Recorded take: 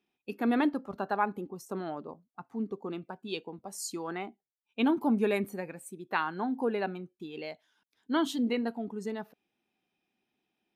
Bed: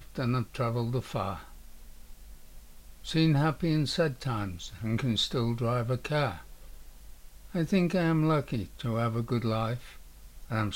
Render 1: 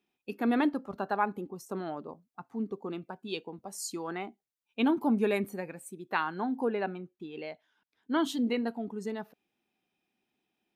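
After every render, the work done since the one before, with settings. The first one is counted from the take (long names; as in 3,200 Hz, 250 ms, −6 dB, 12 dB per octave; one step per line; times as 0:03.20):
0:06.68–0:08.20: bass and treble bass −1 dB, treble −10 dB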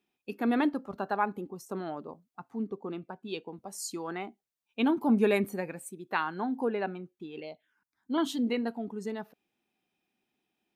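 0:02.66–0:03.47: high-shelf EQ 3,900 Hz −7 dB
0:05.09–0:05.89: clip gain +3 dB
0:07.40–0:08.18: phaser swept by the level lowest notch 450 Hz, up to 1,700 Hz, full sweep at −37 dBFS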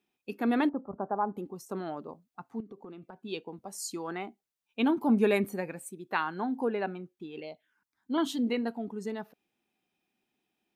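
0:00.69–0:01.37: low-pass filter 1,100 Hz 24 dB per octave
0:02.60–0:03.18: downward compressor 16 to 1, threshold −41 dBFS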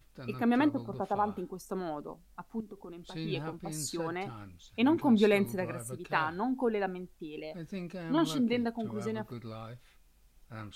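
mix in bed −14 dB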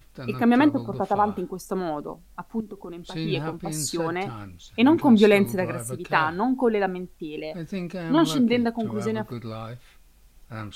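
level +8.5 dB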